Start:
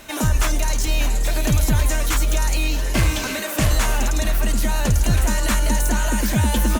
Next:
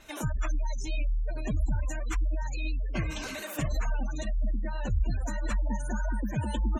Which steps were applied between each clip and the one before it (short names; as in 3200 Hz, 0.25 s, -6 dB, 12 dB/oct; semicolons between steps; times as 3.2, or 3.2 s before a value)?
flange 1.8 Hz, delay 0.6 ms, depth 6.8 ms, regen +32%; spectral gate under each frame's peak -25 dB strong; gain -7.5 dB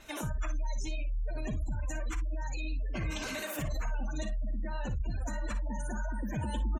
limiter -27 dBFS, peak gain reduction 8.5 dB; on a send: early reflections 42 ms -17.5 dB, 58 ms -12 dB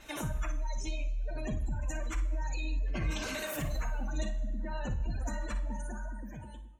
ending faded out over 1.47 s; pre-echo 76 ms -22 dB; two-slope reverb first 0.9 s, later 2.5 s, DRR 10 dB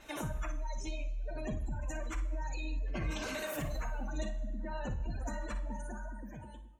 bell 600 Hz +4 dB 3 oct; gain -4 dB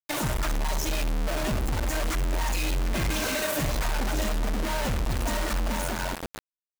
companded quantiser 2-bit; gain +1.5 dB